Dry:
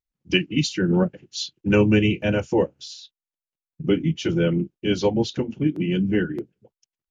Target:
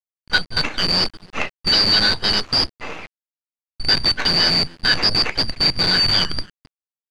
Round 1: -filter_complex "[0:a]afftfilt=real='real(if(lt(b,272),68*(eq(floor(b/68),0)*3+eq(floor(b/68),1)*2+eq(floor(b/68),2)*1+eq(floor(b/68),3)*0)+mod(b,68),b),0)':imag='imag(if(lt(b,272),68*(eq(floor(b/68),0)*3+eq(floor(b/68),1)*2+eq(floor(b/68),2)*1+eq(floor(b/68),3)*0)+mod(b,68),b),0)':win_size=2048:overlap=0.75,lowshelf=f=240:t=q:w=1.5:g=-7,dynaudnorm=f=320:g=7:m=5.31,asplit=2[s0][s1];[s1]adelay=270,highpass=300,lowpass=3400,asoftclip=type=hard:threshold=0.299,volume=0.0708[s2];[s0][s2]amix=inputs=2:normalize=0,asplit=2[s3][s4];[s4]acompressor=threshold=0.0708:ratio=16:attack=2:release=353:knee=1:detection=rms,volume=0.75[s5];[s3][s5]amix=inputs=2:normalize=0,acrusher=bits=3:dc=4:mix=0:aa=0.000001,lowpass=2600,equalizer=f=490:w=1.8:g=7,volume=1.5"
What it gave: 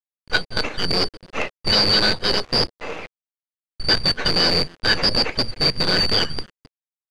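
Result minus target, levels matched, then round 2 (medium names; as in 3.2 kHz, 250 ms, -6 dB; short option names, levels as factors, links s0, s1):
compression: peak gain reduction +11.5 dB; 500 Hz band +6.5 dB
-filter_complex "[0:a]afftfilt=real='real(if(lt(b,272),68*(eq(floor(b/68),0)*3+eq(floor(b/68),1)*2+eq(floor(b/68),2)*1+eq(floor(b/68),3)*0)+mod(b,68),b),0)':imag='imag(if(lt(b,272),68*(eq(floor(b/68),0)*3+eq(floor(b/68),1)*2+eq(floor(b/68),2)*1+eq(floor(b/68),3)*0)+mod(b,68),b),0)':win_size=2048:overlap=0.75,lowshelf=f=240:t=q:w=1.5:g=-7,dynaudnorm=f=320:g=7:m=5.31,asplit=2[s0][s1];[s1]adelay=270,highpass=300,lowpass=3400,asoftclip=type=hard:threshold=0.299,volume=0.0708[s2];[s0][s2]amix=inputs=2:normalize=0,asplit=2[s3][s4];[s4]acompressor=threshold=0.282:ratio=16:attack=2:release=353:knee=1:detection=rms,volume=0.75[s5];[s3][s5]amix=inputs=2:normalize=0,acrusher=bits=3:dc=4:mix=0:aa=0.000001,lowpass=2600,volume=1.5"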